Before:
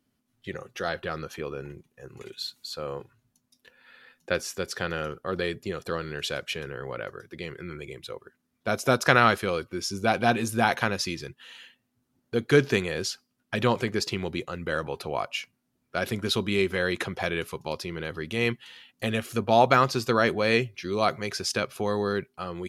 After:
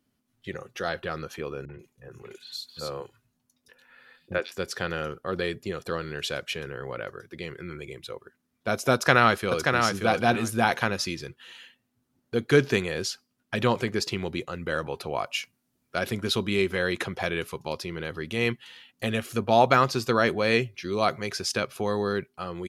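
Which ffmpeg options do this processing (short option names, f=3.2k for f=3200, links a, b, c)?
-filter_complex "[0:a]asettb=1/sr,asplit=3[a][b][c];[a]atrim=end=1.654[d];[b]atrim=start=1.65:end=4.52,asetpts=PTS-STARTPTS,afade=t=in:d=0.004:c=qsin,afade=t=out:st=2.866:d=0.004:c=qsin,acrossover=split=280|3200[e][f][g];[f]adelay=40[h];[g]adelay=140[i];[e][h][i]amix=inputs=3:normalize=0,atrim=end_sample=126567[j];[c]atrim=start=4.516[k];[d][j]acrossfade=d=0.004:c1=hsin:c2=qsin[l];[l][k]acrossfade=d=0.004:c1=qsin:c2=hsin,asplit=2[m][n];[n]afade=t=in:st=8.93:d=0.01,afade=t=out:st=9.78:d=0.01,aecho=0:1:580|1160|1740:0.595662|0.0893493|0.0134024[o];[m][o]amix=inputs=2:normalize=0,asettb=1/sr,asplit=3[p][q][r];[p]atrim=end=15.264[s];[q]atrim=start=15.26:end=15.99,asetpts=PTS-STARTPTS,afade=t=in:d=0.004:c=qsin,afade=t=out:st=0.726:d=0.004:c=qsin,highshelf=f=4.3k:g=6[t];[r]atrim=start=15.986[u];[s][t]acrossfade=d=0.004:c1=hsin:c2=qsin[v];[v][u]acrossfade=d=0.004:c1=qsin:c2=hsin"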